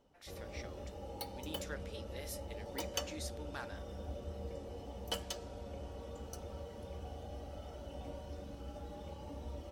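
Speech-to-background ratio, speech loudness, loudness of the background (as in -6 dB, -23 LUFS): -3.0 dB, -49.0 LUFS, -46.0 LUFS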